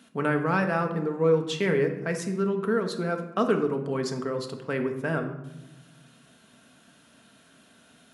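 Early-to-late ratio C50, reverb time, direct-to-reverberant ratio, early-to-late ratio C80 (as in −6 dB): 8.5 dB, 1.0 s, 4.0 dB, 11.5 dB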